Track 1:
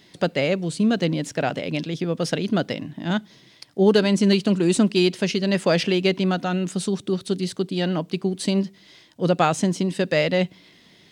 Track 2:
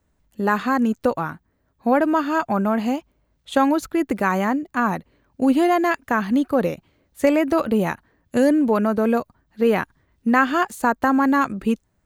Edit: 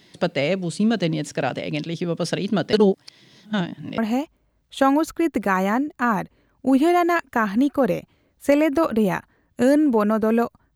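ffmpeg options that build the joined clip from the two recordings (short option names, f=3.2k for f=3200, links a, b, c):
-filter_complex "[0:a]apad=whole_dur=10.75,atrim=end=10.75,asplit=2[a][b];[a]atrim=end=2.732[c];[b]atrim=start=2.728:end=3.982,asetpts=PTS-STARTPTS,areverse[d];[1:a]atrim=start=2.728:end=9.5[e];[c][d]acrossfade=d=0.004:c1=hsin:c2=hsin[f];[f][e]acrossfade=d=0.004:c1=hsin:c2=hsin"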